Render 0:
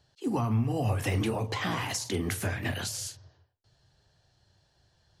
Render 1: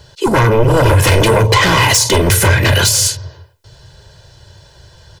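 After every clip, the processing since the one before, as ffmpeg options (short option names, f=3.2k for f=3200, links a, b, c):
-af "aeval=exprs='0.15*sin(PI/2*3.55*val(0)/0.15)':c=same,aecho=1:1:2:0.59,volume=8.5dB"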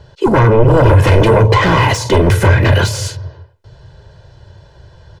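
-af "lowpass=f=1.2k:p=1,volume=2.5dB"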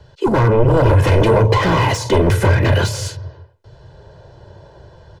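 -filter_complex "[0:a]acrossover=split=190|1100|2500[a][b][c][d];[b]dynaudnorm=f=470:g=5:m=13dB[e];[c]asoftclip=type=hard:threshold=-21dB[f];[a][e][f][d]amix=inputs=4:normalize=0,volume=-4dB"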